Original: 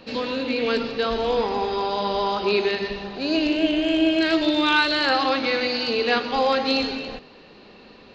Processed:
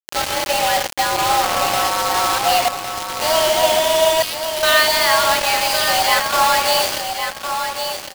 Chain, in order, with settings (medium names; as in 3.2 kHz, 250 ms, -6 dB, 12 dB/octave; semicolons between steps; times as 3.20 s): 2.68–3.20 s: compressor with a negative ratio -34 dBFS; 4.22–4.63 s: Chebyshev high-pass 2.2 kHz, order 6; frequency shift +320 Hz; bit crusher 4-bit; on a send: feedback delay 1108 ms, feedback 17%, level -7 dB; on the sum: trim +4 dB